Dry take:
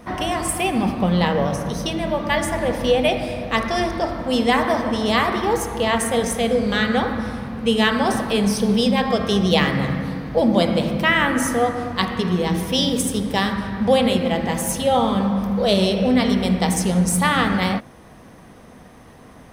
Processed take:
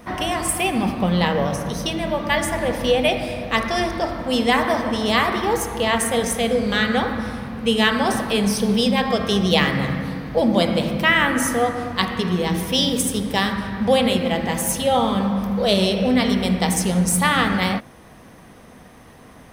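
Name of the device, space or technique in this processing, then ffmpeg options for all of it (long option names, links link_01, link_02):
presence and air boost: -af "equalizer=frequency=2500:width_type=o:width=1.9:gain=2.5,highshelf=frequency=10000:gain=6,volume=-1dB"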